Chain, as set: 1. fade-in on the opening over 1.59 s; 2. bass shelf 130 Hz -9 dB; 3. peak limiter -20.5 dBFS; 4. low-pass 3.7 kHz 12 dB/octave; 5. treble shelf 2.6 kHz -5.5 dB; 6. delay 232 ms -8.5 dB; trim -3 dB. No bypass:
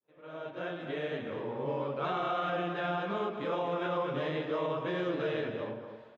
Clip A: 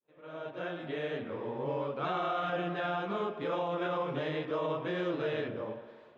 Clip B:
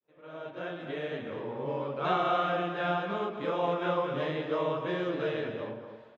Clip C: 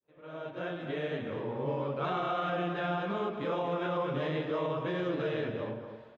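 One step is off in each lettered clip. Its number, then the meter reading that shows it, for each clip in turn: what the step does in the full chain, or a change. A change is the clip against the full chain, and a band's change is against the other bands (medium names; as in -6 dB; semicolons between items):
6, crest factor change -1.5 dB; 3, crest factor change +2.5 dB; 2, 125 Hz band +3.5 dB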